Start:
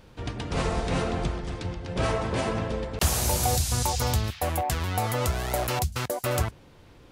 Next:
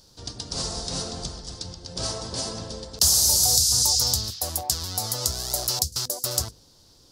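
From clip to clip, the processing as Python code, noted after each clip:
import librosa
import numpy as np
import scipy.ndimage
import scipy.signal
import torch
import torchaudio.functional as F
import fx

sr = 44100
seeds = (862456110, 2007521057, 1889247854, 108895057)

y = fx.high_shelf_res(x, sr, hz=3400.0, db=13.5, q=3.0)
y = fx.hum_notches(y, sr, base_hz=50, count=10)
y = F.gain(torch.from_numpy(y), -6.5).numpy()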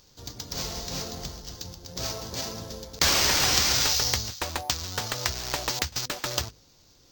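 y = fx.sample_hold(x, sr, seeds[0], rate_hz=11000.0, jitter_pct=0)
y = F.gain(torch.from_numpy(y), -3.0).numpy()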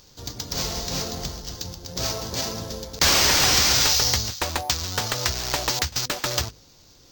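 y = 10.0 ** (-15.5 / 20.0) * np.tanh(x / 10.0 ** (-15.5 / 20.0))
y = F.gain(torch.from_numpy(y), 5.5).numpy()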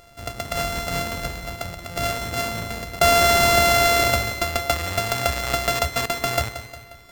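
y = np.r_[np.sort(x[:len(x) // 64 * 64].reshape(-1, 64), axis=1).ravel(), x[len(x) // 64 * 64:]]
y = fx.echo_feedback(y, sr, ms=178, feedback_pct=51, wet_db=-12.0)
y = F.gain(torch.from_numpy(y), 2.5).numpy()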